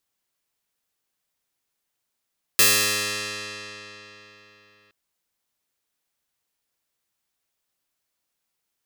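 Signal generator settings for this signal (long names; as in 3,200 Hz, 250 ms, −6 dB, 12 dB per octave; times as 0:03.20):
Karplus-Strong string G#2, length 2.32 s, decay 3.83 s, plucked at 0.14, bright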